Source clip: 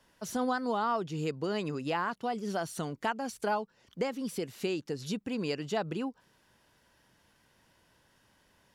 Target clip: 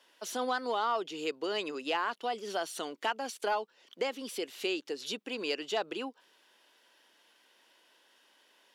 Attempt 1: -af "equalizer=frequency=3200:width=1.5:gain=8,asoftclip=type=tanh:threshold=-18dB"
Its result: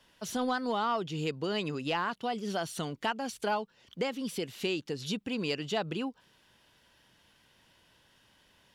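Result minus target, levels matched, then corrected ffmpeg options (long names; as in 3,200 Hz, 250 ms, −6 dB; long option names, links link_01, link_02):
250 Hz band +5.5 dB
-af "highpass=frequency=310:width=0.5412,highpass=frequency=310:width=1.3066,equalizer=frequency=3200:width=1.5:gain=8,asoftclip=type=tanh:threshold=-18dB"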